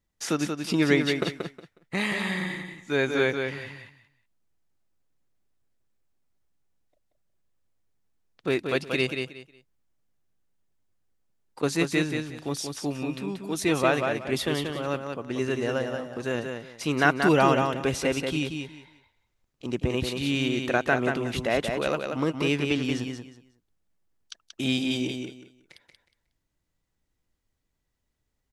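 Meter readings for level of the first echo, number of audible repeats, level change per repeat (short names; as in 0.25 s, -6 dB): -5.5 dB, 3, -13.0 dB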